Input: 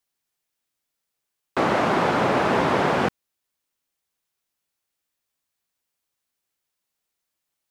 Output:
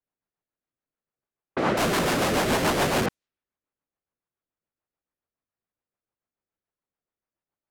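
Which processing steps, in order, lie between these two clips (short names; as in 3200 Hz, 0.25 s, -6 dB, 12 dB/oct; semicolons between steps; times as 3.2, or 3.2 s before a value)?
1.77–3.06 Schmitt trigger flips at -32 dBFS; rotary speaker horn 7 Hz; low-pass opened by the level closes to 1300 Hz, open at -23 dBFS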